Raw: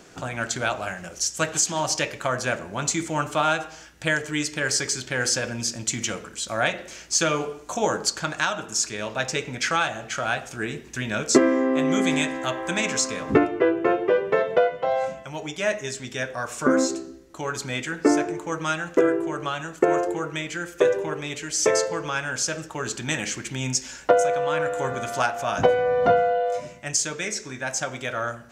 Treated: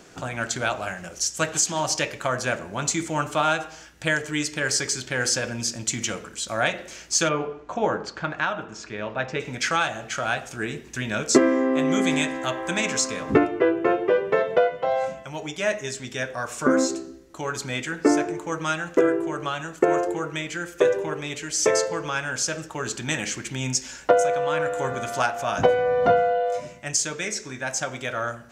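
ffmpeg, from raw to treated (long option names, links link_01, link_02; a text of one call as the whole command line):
ffmpeg -i in.wav -filter_complex "[0:a]asplit=3[link_01][link_02][link_03];[link_01]afade=type=out:start_time=7.28:duration=0.02[link_04];[link_02]lowpass=2400,afade=type=in:start_time=7.28:duration=0.02,afade=type=out:start_time=9.39:duration=0.02[link_05];[link_03]afade=type=in:start_time=9.39:duration=0.02[link_06];[link_04][link_05][link_06]amix=inputs=3:normalize=0" out.wav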